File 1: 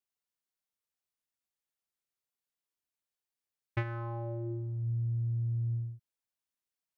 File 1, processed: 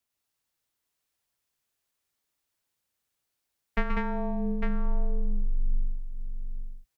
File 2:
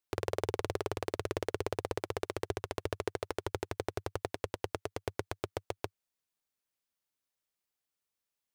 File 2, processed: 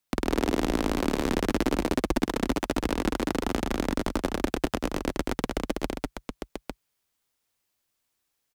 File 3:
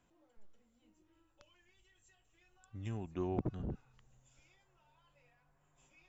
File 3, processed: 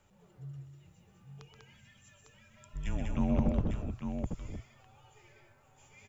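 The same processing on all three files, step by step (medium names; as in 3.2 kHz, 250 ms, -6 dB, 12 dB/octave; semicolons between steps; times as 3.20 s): frequency shift -140 Hz; multi-tap echo 128/196/852 ms -7/-3.5/-6.5 dB; trim +7.5 dB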